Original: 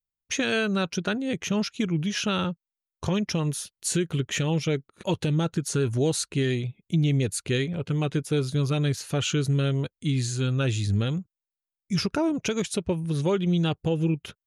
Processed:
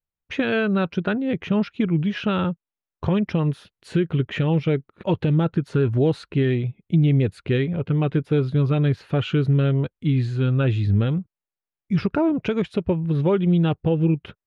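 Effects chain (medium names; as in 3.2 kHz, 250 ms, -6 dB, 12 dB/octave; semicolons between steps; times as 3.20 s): distance through air 440 m; trim +5.5 dB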